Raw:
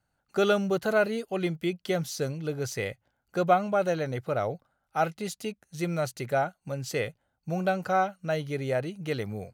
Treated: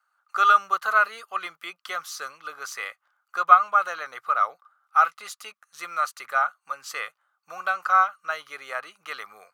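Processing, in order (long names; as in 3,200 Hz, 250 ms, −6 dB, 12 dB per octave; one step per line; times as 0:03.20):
high-pass with resonance 1,200 Hz, resonance Q 12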